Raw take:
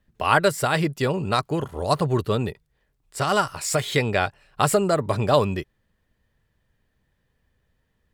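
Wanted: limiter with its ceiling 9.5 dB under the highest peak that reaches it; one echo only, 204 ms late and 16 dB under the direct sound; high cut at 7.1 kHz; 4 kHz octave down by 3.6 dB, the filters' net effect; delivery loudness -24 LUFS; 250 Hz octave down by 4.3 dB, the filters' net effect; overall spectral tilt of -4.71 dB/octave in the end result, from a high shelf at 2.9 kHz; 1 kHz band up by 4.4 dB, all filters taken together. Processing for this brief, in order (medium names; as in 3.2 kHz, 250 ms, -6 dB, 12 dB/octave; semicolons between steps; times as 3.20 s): low-pass 7.1 kHz; peaking EQ 250 Hz -7.5 dB; peaking EQ 1 kHz +6 dB; treble shelf 2.9 kHz +5 dB; peaking EQ 4 kHz -8.5 dB; peak limiter -10.5 dBFS; delay 204 ms -16 dB; trim +0.5 dB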